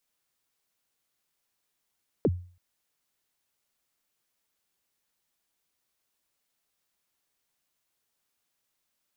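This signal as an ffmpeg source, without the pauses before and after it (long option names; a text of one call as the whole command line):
ffmpeg -f lavfi -i "aevalsrc='0.141*pow(10,-3*t/0.42)*sin(2*PI*(540*0.044/log(89/540)*(exp(log(89/540)*min(t,0.044)/0.044)-1)+89*max(t-0.044,0)))':duration=0.33:sample_rate=44100" out.wav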